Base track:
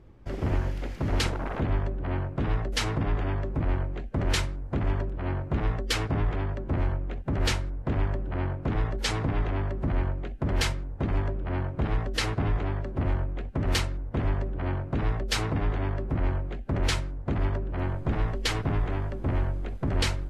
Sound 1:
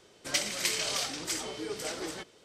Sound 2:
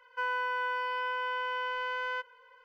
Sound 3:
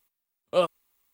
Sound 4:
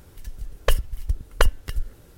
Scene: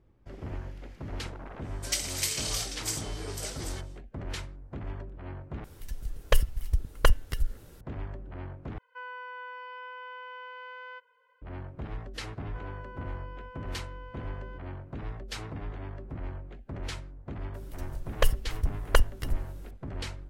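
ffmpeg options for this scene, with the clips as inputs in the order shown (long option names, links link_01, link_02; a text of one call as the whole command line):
ffmpeg -i bed.wav -i cue0.wav -i cue1.wav -i cue2.wav -i cue3.wav -filter_complex "[4:a]asplit=2[link_01][link_02];[2:a]asplit=2[link_03][link_04];[0:a]volume=-11dB[link_05];[1:a]highshelf=frequency=5300:gain=12[link_06];[link_01]acontrast=51[link_07];[link_03]highpass=140,lowpass=3800[link_08];[link_04]tiltshelf=frequency=710:gain=9.5[link_09];[link_05]asplit=3[link_10][link_11][link_12];[link_10]atrim=end=5.644[link_13];[link_07]atrim=end=2.17,asetpts=PTS-STARTPTS,volume=-7dB[link_14];[link_11]atrim=start=7.806:end=8.784[link_15];[link_08]atrim=end=2.64,asetpts=PTS-STARTPTS,volume=-9.5dB[link_16];[link_12]atrim=start=11.416[link_17];[link_06]atrim=end=2.44,asetpts=PTS-STARTPTS,volume=-6dB,afade=type=in:duration=0.1,afade=type=out:start_time=2.34:duration=0.1,adelay=1580[link_18];[link_09]atrim=end=2.64,asetpts=PTS-STARTPTS,volume=-12dB,afade=type=in:duration=0.004:curve=hsin,afade=type=out:start_time=2.636:duration=0.004:curve=hsin,adelay=12370[link_19];[link_02]atrim=end=2.17,asetpts=PTS-STARTPTS,volume=-3.5dB,afade=type=in:duration=0.004:curve=hsin,afade=type=out:start_time=2.166:duration=0.004:curve=hsin,adelay=17540[link_20];[link_13][link_14]acrossfade=duration=0.004:curve1=hsin:curve2=hsin[link_21];[link_21][link_15]acrossfade=duration=0.004:curve1=hsin:curve2=hsin[link_22];[link_22][link_16]acrossfade=duration=0.004:curve1=hsin:curve2=hsin[link_23];[link_23][link_17]acrossfade=duration=0.004:curve1=hsin:curve2=hsin[link_24];[link_24][link_18][link_19][link_20]amix=inputs=4:normalize=0" out.wav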